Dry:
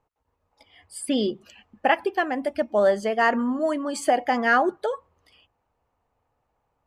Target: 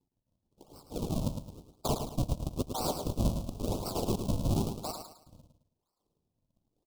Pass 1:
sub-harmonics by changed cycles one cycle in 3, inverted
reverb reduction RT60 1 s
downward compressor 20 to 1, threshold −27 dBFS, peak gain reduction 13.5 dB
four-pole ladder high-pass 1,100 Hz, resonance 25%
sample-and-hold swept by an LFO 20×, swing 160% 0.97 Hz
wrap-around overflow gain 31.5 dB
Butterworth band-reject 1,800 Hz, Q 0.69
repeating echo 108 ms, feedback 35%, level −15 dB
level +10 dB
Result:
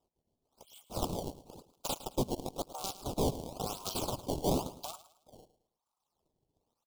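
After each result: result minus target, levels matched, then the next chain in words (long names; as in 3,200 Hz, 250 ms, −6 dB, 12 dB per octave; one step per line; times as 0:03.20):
sample-and-hold swept by an LFO: distortion −17 dB; downward compressor: peak gain reduction +9 dB; echo-to-direct −8 dB
sub-harmonics by changed cycles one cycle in 3, inverted
reverb reduction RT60 1 s
downward compressor 20 to 1, threshold −27 dBFS, peak gain reduction 13.5 dB
four-pole ladder high-pass 1,100 Hz, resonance 25%
sample-and-hold swept by an LFO 64×, swing 160% 0.97 Hz
wrap-around overflow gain 31.5 dB
Butterworth band-reject 1,800 Hz, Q 0.69
repeating echo 108 ms, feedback 35%, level −15 dB
level +10 dB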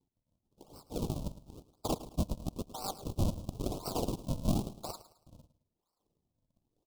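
downward compressor: peak gain reduction +9 dB; echo-to-direct −8 dB
sub-harmonics by changed cycles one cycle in 3, inverted
reverb reduction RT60 1 s
downward compressor 20 to 1, threshold −17.5 dBFS, peak gain reduction 4.5 dB
four-pole ladder high-pass 1,100 Hz, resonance 25%
sample-and-hold swept by an LFO 64×, swing 160% 0.97 Hz
wrap-around overflow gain 31.5 dB
Butterworth band-reject 1,800 Hz, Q 0.69
repeating echo 108 ms, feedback 35%, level −15 dB
level +10 dB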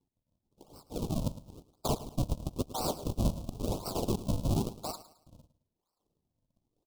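echo-to-direct −8 dB
sub-harmonics by changed cycles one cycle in 3, inverted
reverb reduction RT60 1 s
downward compressor 20 to 1, threshold −17.5 dBFS, peak gain reduction 4.5 dB
four-pole ladder high-pass 1,100 Hz, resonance 25%
sample-and-hold swept by an LFO 64×, swing 160% 0.97 Hz
wrap-around overflow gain 31.5 dB
Butterworth band-reject 1,800 Hz, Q 0.69
repeating echo 108 ms, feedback 35%, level −7 dB
level +10 dB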